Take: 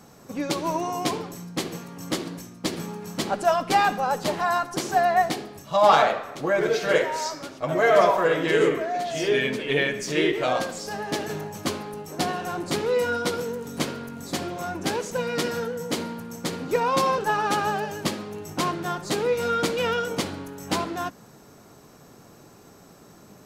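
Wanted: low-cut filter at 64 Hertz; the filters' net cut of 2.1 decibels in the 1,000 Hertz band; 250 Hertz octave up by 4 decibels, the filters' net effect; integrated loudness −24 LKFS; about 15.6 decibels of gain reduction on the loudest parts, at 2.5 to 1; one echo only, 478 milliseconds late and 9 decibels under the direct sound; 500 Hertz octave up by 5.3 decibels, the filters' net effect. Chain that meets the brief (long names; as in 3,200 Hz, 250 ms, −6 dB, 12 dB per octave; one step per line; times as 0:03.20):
high-pass filter 64 Hz
parametric band 250 Hz +3 dB
parametric band 500 Hz +7.5 dB
parametric band 1,000 Hz −7 dB
downward compressor 2.5 to 1, threshold −35 dBFS
single-tap delay 478 ms −9 dB
level +9.5 dB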